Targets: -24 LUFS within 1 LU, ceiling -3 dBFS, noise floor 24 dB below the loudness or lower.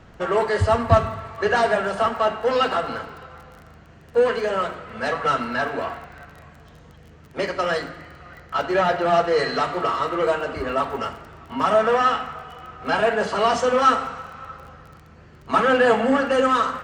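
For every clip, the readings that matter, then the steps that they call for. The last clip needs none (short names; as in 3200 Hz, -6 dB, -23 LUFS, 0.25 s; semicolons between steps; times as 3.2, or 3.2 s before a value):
ticks 23/s; loudness -21.5 LUFS; peak -1.5 dBFS; loudness target -24.0 LUFS
-> de-click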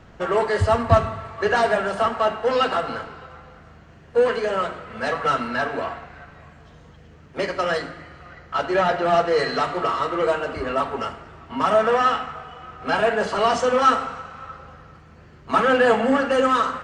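ticks 0/s; loudness -21.5 LUFS; peak -1.5 dBFS; loudness target -24.0 LUFS
-> gain -2.5 dB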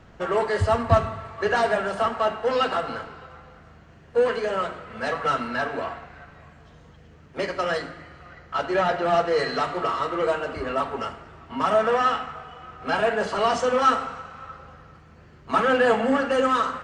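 loudness -24.0 LUFS; peak -4.0 dBFS; noise floor -50 dBFS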